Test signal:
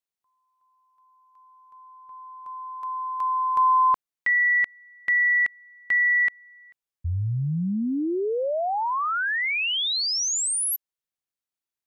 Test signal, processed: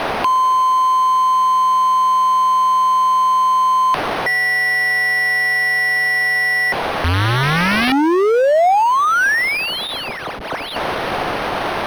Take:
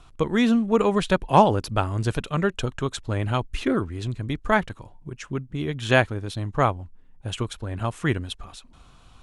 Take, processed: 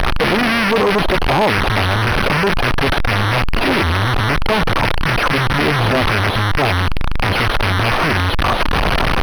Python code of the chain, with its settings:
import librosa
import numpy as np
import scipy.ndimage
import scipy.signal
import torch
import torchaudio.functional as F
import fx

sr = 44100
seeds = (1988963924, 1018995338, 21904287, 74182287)

p1 = np.sign(x) * np.sqrt(np.mean(np.square(x)))
p2 = fx.curve_eq(p1, sr, hz=(100.0, 210.0, 720.0, 4300.0, 7100.0, 11000.0), db=(0, 3, 11, -7, -22, -9))
p3 = fx.over_compress(p2, sr, threshold_db=-24.0, ratio=-0.5)
p4 = p2 + F.gain(torch.from_numpy(p3), -1.0).numpy()
p5 = (np.mod(10.0 ** (12.0 / 20.0) * p4 + 1.0, 2.0) - 1.0) / 10.0 ** (12.0 / 20.0)
p6 = np.interp(np.arange(len(p5)), np.arange(len(p5))[::6], p5[::6])
y = F.gain(torch.from_numpy(p6), 4.0).numpy()